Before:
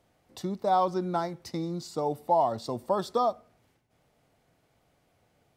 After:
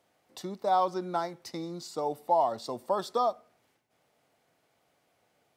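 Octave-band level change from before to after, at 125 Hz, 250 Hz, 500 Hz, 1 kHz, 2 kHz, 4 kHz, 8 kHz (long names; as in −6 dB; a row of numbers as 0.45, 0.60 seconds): −8.0, −5.0, −2.0, −1.0, −0.5, 0.0, 0.0 decibels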